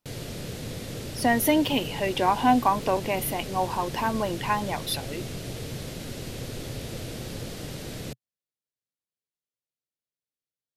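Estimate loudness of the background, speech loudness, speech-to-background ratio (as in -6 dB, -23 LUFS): -36.0 LUFS, -25.5 LUFS, 10.5 dB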